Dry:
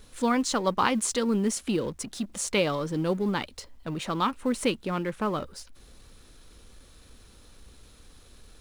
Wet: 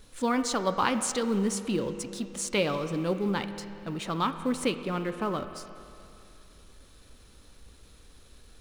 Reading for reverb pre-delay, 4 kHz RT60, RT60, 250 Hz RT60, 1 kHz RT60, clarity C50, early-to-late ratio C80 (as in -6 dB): 6 ms, 2.7 s, 2.7 s, 2.7 s, 2.7 s, 9.5 dB, 10.5 dB